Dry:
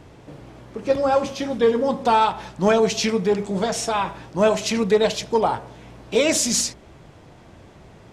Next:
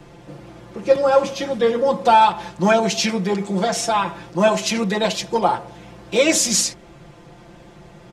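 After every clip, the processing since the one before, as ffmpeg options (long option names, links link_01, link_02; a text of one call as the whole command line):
ffmpeg -i in.wav -filter_complex "[0:a]aecho=1:1:5.8:0.99,acrossover=split=150|1500|5600[link_01][link_02][link_03][link_04];[link_01]acompressor=threshold=-44dB:ratio=6[link_05];[link_05][link_02][link_03][link_04]amix=inputs=4:normalize=0" out.wav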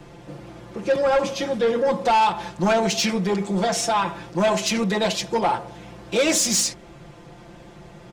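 ffmpeg -i in.wav -af "asoftclip=type=tanh:threshold=-14dB" out.wav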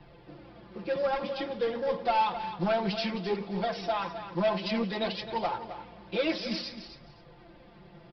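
ffmpeg -i in.wav -af "flanger=delay=1:depth=5.2:regen=40:speed=0.56:shape=triangular,aresample=11025,acrusher=bits=6:mode=log:mix=0:aa=0.000001,aresample=44100,aecho=1:1:262|524:0.282|0.0507,volume=-5.5dB" out.wav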